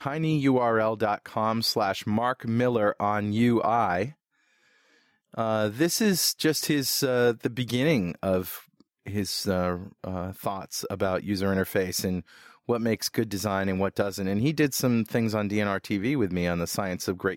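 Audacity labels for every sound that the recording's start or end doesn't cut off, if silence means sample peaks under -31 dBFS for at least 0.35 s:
5.370000	8.570000	sound
9.070000	12.200000	sound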